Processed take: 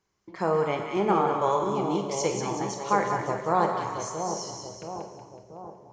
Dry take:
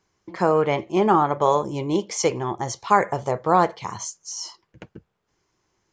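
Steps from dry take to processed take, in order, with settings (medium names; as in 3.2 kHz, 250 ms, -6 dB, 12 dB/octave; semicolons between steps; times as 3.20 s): two-band feedback delay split 840 Hz, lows 681 ms, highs 186 ms, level -5.5 dB; on a send at -5 dB: reverberation RT60 0.90 s, pre-delay 22 ms; on the sum: trim -7 dB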